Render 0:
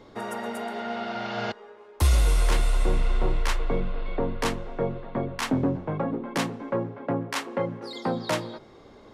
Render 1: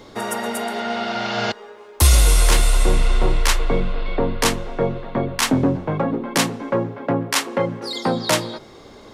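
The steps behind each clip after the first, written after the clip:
high-shelf EQ 3,700 Hz +10.5 dB
level +6.5 dB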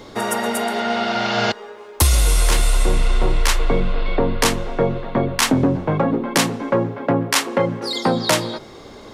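downward compressor, threshold −15 dBFS, peak gain reduction 6.5 dB
level +3.5 dB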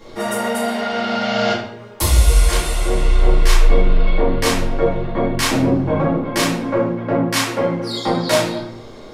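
convolution reverb RT60 0.65 s, pre-delay 4 ms, DRR −8.5 dB
level −9 dB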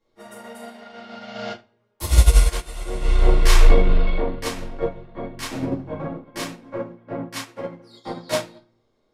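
expander for the loud parts 2.5 to 1, over −29 dBFS
level +2.5 dB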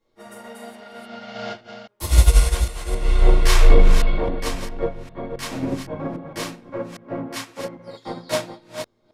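delay that plays each chunk backwards 268 ms, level −8 dB

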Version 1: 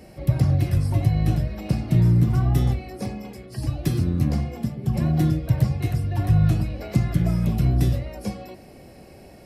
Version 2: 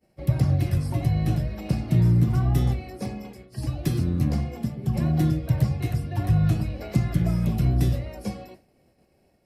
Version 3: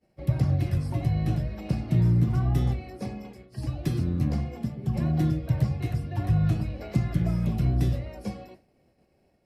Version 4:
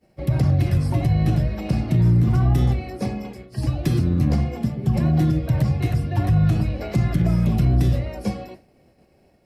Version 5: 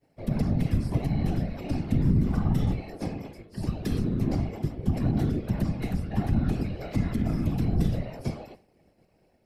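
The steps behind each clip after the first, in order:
downward expander −34 dBFS; mains-hum notches 50/100 Hz; level −1.5 dB
high-shelf EQ 7,300 Hz −8 dB; level −2.5 dB
brickwall limiter −19 dBFS, peak gain reduction 7 dB; level +8.5 dB
random phases in short frames; level −7 dB

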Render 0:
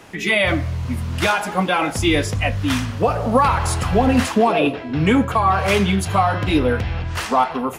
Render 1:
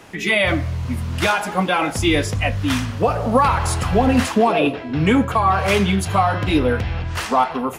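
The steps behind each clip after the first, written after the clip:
no processing that can be heard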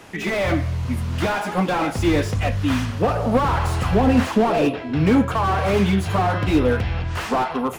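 slew-rate limiting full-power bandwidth 110 Hz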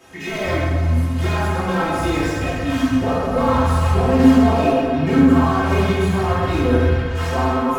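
stiff-string resonator 78 Hz, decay 0.2 s, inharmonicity 0.03
dense smooth reverb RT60 1.9 s, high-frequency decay 0.6×, DRR −9 dB
level −1 dB

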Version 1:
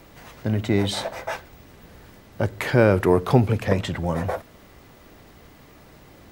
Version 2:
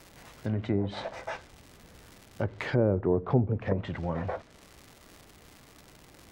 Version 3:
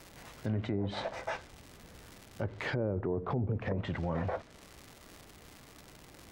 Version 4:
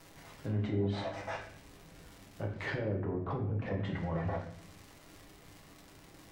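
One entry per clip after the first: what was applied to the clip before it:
surface crackle 260 per second −32 dBFS; treble cut that deepens with the level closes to 620 Hz, closed at −15 dBFS; level −7 dB
brickwall limiter −24 dBFS, peak gain reduction 11.5 dB
convolution reverb RT60 0.65 s, pre-delay 6 ms, DRR −1 dB; level −5.5 dB

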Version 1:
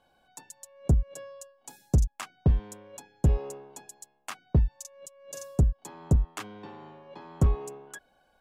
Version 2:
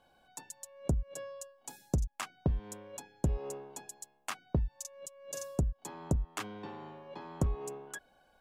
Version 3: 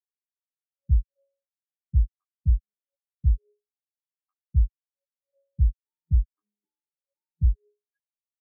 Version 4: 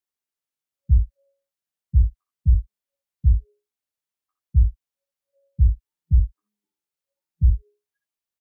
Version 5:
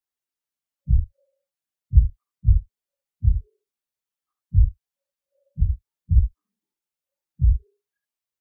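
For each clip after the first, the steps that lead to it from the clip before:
downward compressor 5 to 1, threshold −28 dBFS, peak gain reduction 10 dB
every bin expanded away from the loudest bin 4 to 1; level +6.5 dB
ambience of single reflections 61 ms −7 dB, 72 ms −12.5 dB; level +4 dB
random phases in long frames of 50 ms; level −1.5 dB

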